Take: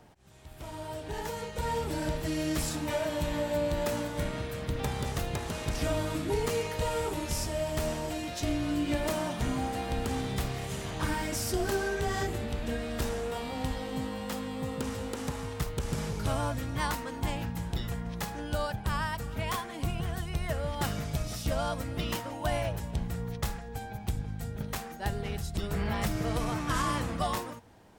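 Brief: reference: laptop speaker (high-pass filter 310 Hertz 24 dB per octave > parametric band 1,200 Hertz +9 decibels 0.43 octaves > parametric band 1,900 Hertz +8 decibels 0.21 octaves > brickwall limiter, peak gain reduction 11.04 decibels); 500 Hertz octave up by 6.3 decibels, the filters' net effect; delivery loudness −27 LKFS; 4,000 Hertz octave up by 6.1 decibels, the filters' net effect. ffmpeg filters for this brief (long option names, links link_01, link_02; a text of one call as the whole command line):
ffmpeg -i in.wav -af "highpass=frequency=310:width=0.5412,highpass=frequency=310:width=1.3066,equalizer=frequency=500:width_type=o:gain=7.5,equalizer=frequency=1200:width_type=o:width=0.43:gain=9,equalizer=frequency=1900:width_type=o:width=0.21:gain=8,equalizer=frequency=4000:width_type=o:gain=7.5,volume=6dB,alimiter=limit=-17.5dB:level=0:latency=1" out.wav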